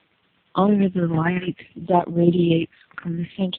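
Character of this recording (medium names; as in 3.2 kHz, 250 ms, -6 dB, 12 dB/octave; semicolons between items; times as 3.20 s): phasing stages 4, 0.6 Hz, lowest notch 550–2500 Hz; a quantiser's noise floor 10-bit, dither triangular; tremolo saw down 8.8 Hz, depth 55%; AMR-NB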